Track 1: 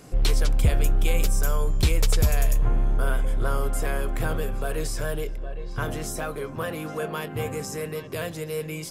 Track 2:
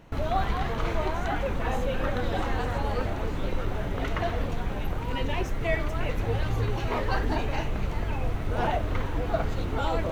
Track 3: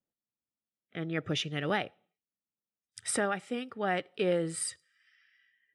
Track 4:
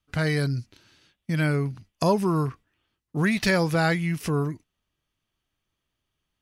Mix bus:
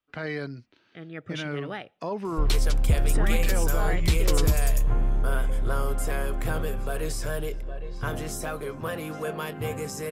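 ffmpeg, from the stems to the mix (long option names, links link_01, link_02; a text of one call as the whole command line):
ffmpeg -i stem1.wav -i stem2.wav -i stem3.wav -i stem4.wav -filter_complex "[0:a]adelay=2250,volume=-1.5dB[link_01];[2:a]volume=-5.5dB[link_02];[3:a]acrossover=split=220 4700:gain=0.178 1 0.224[link_03][link_04][link_05];[link_03][link_04][link_05]amix=inputs=3:normalize=0,alimiter=limit=-19dB:level=0:latency=1:release=24,aemphasis=mode=reproduction:type=50kf,volume=-3dB[link_06];[link_01][link_02][link_06]amix=inputs=3:normalize=0" out.wav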